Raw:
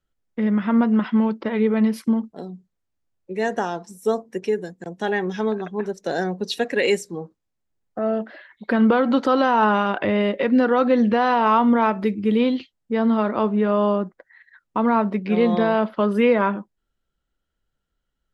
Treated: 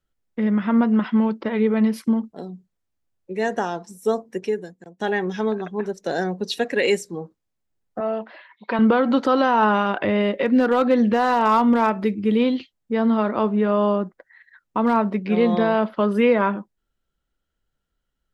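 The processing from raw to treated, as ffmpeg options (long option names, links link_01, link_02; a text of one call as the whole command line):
ffmpeg -i in.wav -filter_complex "[0:a]asettb=1/sr,asplit=3[link_01][link_02][link_03];[link_01]atrim=end=8.004[link_04];[link_02]atrim=start=8:end=8.79,asetpts=PTS-STARTPTS,afade=type=in:duration=0.004:curve=qsin,afade=type=out:start_time=0.786:duration=0.004:curve=qsin,highpass=250,equalizer=frequency=270:width_type=q:width=4:gain=-8,equalizer=frequency=390:width_type=q:width=4:gain=-4,equalizer=frequency=580:width_type=q:width=4:gain=-3,equalizer=frequency=980:width_type=q:width=4:gain=9,equalizer=frequency=1600:width_type=q:width=4:gain=-5,equalizer=frequency=2500:width_type=q:width=4:gain=5,lowpass=frequency=5700:width=0.5412,lowpass=frequency=5700:width=1.3066[link_05];[link_03]atrim=start=8.786[link_06];[link_04][link_05]acrossfade=duration=0.004:curve1=hsin:curve2=qsin[link_07];[link_07][link_06]acrossfade=duration=0.004:curve1=qsin:curve2=hsin,asplit=3[link_08][link_09][link_10];[link_08]afade=type=out:start_time=10.45:duration=0.02[link_11];[link_09]asoftclip=type=hard:threshold=-10dB,afade=type=in:start_time=10.45:duration=0.02,afade=type=out:start_time=14.98:duration=0.02[link_12];[link_10]afade=type=in:start_time=14.98:duration=0.02[link_13];[link_11][link_12][link_13]amix=inputs=3:normalize=0,asplit=2[link_14][link_15];[link_14]atrim=end=5,asetpts=PTS-STARTPTS,afade=type=out:start_time=4.4:duration=0.6:silence=0.141254[link_16];[link_15]atrim=start=5,asetpts=PTS-STARTPTS,afade=type=in:duration=0.004:curve=hsin:silence=0.141254[link_17];[link_16][link_17]concat=n=2:v=0:a=1" out.wav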